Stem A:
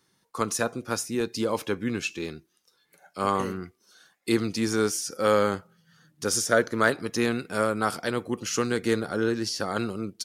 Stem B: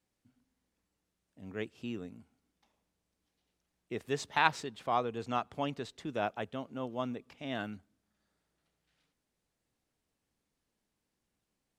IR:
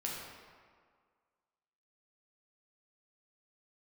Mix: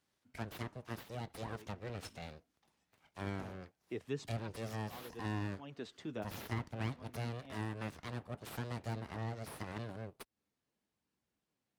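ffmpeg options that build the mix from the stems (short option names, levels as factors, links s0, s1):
-filter_complex "[0:a]aeval=exprs='abs(val(0))':c=same,volume=0.355,asplit=2[s0][s1];[1:a]flanger=delay=0.7:depth=9.2:regen=-43:speed=0.72:shape=sinusoidal,volume=1.12[s2];[s1]apad=whole_len=519799[s3];[s2][s3]sidechaincompress=threshold=0.00282:ratio=8:attack=27:release=212[s4];[s0][s4]amix=inputs=2:normalize=0,highpass=71,highshelf=f=7100:g=-8,acrossover=split=390[s5][s6];[s6]acompressor=threshold=0.00501:ratio=3[s7];[s5][s7]amix=inputs=2:normalize=0"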